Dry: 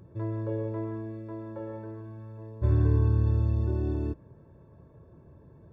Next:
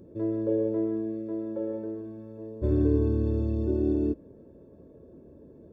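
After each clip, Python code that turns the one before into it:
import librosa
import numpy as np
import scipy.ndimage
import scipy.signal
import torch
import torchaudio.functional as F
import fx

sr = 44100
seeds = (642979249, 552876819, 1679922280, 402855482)

y = fx.graphic_eq(x, sr, hz=(125, 250, 500, 1000, 2000), db=(-10, 10, 8, -9, -5))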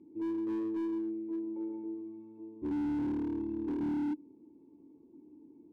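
y = fx.vowel_filter(x, sr, vowel='u')
y = fx.slew_limit(y, sr, full_power_hz=5.8)
y = F.gain(torch.from_numpy(y), 3.0).numpy()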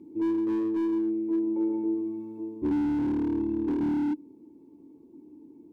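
y = fx.rider(x, sr, range_db=4, speed_s=0.5)
y = F.gain(torch.from_numpy(y), 8.0).numpy()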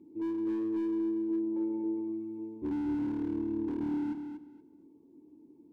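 y = fx.echo_feedback(x, sr, ms=236, feedback_pct=21, wet_db=-7.5)
y = F.gain(torch.from_numpy(y), -7.0).numpy()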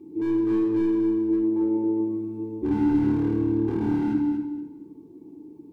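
y = fx.room_shoebox(x, sr, seeds[0], volume_m3=2000.0, walls='furnished', distance_m=3.7)
y = F.gain(torch.from_numpy(y), 7.0).numpy()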